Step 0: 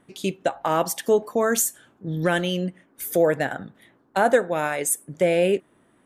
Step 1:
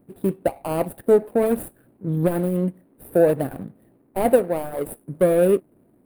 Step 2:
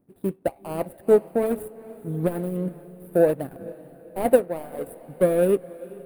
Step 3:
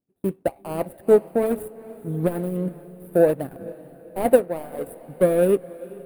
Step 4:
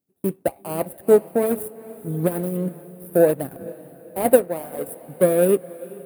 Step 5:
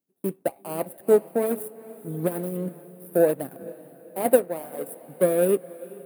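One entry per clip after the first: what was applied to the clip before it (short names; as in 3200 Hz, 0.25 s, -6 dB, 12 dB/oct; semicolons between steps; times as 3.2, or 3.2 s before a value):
median filter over 41 samples; EQ curve 580 Hz 0 dB, 4300 Hz -12 dB, 6400 Hz -20 dB, 9500 Hz +10 dB; gain +4.5 dB
diffused feedback echo 0.451 s, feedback 54%, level -13 dB; upward expander 1.5:1, over -30 dBFS
gate with hold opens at -38 dBFS; gain +1.5 dB
HPF 62 Hz; high shelf 7300 Hz +11 dB; gain +1 dB
HPF 160 Hz 12 dB/oct; gain -3.5 dB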